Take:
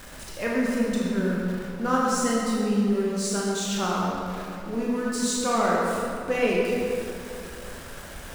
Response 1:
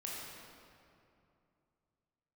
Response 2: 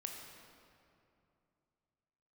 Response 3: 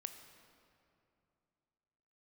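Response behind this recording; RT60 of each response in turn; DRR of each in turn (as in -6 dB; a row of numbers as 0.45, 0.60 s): 1; 2.6, 2.7, 2.7 s; -5.0, 1.5, 7.5 dB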